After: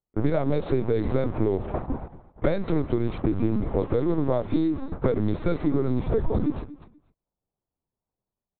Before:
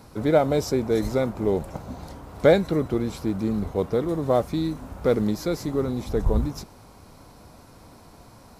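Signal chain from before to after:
low-pass that shuts in the quiet parts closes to 860 Hz, open at −16 dBFS
noise gate −36 dBFS, range −49 dB
dynamic equaliser 280 Hz, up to +6 dB, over −42 dBFS, Q 4.6
automatic gain control gain up to 3 dB
in parallel at −1 dB: brickwall limiter −11.5 dBFS, peak gain reduction 9 dB
on the sum: downward compressor 16 to 1, threshold −19 dBFS, peak gain reduction 13 dB
repeating echo 240 ms, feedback 19%, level −17 dB
linear-prediction vocoder at 8 kHz pitch kept

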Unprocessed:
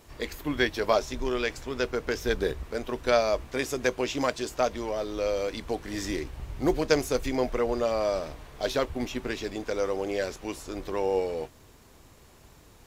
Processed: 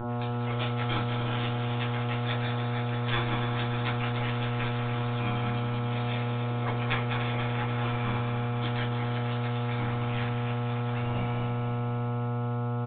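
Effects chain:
gate on every frequency bin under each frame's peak −20 dB weak
hum with harmonics 120 Hz, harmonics 12, −36 dBFS −5 dB per octave
echo machine with several playback heads 97 ms, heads second and third, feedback 75%, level −9 dB
convolution reverb RT60 0.30 s, pre-delay 4 ms, DRR −0.5 dB
downsampling to 8,000 Hz
level +1 dB

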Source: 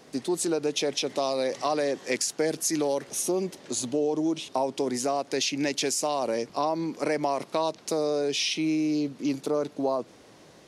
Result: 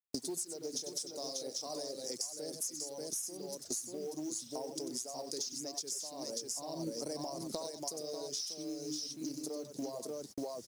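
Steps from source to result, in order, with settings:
multi-tap delay 92/589 ms −7/−4 dB
noise gate −40 dBFS, range −43 dB
drawn EQ curve 620 Hz 0 dB, 2,500 Hz −17 dB, 5,100 Hz +14 dB
downward compressor 20 to 1, threshold −38 dBFS, peak gain reduction 29 dB
0:00.66–0:01.76: double-tracking delay 41 ms −9.5 dB
reverb reduction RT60 0.56 s
log-companded quantiser 6 bits
0:06.44–0:07.59: low-shelf EQ 190 Hz +8.5 dB
level +2 dB

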